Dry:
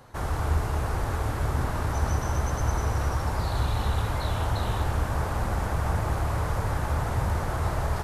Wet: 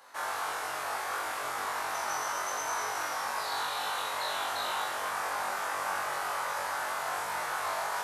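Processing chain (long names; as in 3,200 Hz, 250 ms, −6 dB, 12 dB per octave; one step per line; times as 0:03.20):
high-pass filter 890 Hz 12 dB per octave
on a send: flutter between parallel walls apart 3.6 metres, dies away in 0.47 s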